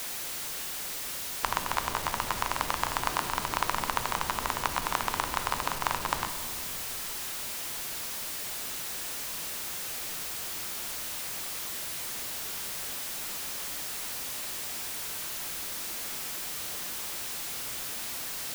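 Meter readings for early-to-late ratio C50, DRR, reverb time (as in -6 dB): 10.5 dB, 9.0 dB, 2.4 s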